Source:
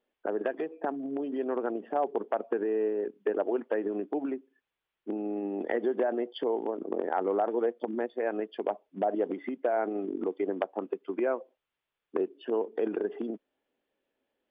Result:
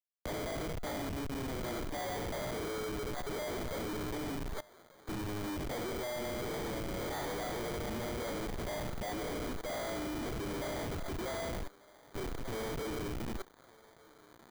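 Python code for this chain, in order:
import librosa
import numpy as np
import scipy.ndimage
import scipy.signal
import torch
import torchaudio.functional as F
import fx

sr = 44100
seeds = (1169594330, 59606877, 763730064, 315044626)

y = fx.reverse_delay(x, sr, ms=108, wet_db=-9.5)
y = scipy.signal.sosfilt(scipy.signal.butter(2, 130.0, 'highpass', fs=sr, output='sos'), y)
y = fx.peak_eq(y, sr, hz=1300.0, db=10.5, octaves=1.7)
y = fx.rev_fdn(y, sr, rt60_s=1.2, lf_ratio=0.9, hf_ratio=0.5, size_ms=10.0, drr_db=1.0)
y = fx.cheby_harmonics(y, sr, harmonics=(3, 4, 7), levels_db=(-23, -37, -39), full_scale_db=-7.5)
y = fx.schmitt(y, sr, flips_db=-31.5)
y = fx.echo_thinned(y, sr, ms=1191, feedback_pct=31, hz=1000.0, wet_db=-5.0)
y = np.clip(y, -10.0 ** (-28.0 / 20.0), 10.0 ** (-28.0 / 20.0))
y = fx.air_absorb(y, sr, metres=190.0)
y = fx.comb_fb(y, sr, f0_hz=710.0, decay_s=0.21, harmonics='all', damping=0.0, mix_pct=50)
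y = fx.level_steps(y, sr, step_db=22)
y = fx.sample_hold(y, sr, seeds[0], rate_hz=2700.0, jitter_pct=0)
y = y * 10.0 ** (6.5 / 20.0)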